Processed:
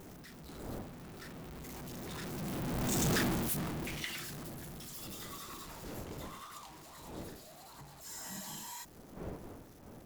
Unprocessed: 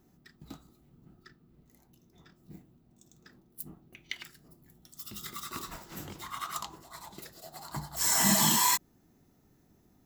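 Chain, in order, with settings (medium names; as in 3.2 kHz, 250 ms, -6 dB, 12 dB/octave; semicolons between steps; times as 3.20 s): jump at every zero crossing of -29 dBFS; Doppler pass-by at 3.11 s, 11 m/s, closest 2.5 m; wind noise 440 Hz -57 dBFS; trim +5 dB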